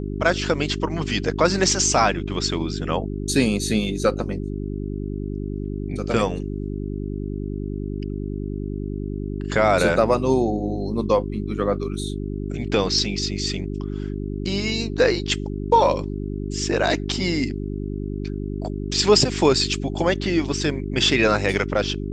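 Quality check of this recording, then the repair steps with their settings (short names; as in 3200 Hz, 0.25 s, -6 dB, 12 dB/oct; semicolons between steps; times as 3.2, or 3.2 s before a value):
hum 50 Hz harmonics 8 -28 dBFS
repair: de-hum 50 Hz, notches 8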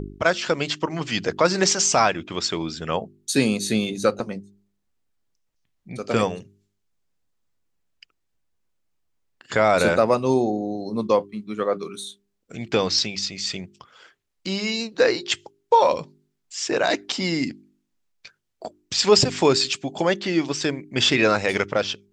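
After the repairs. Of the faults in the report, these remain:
none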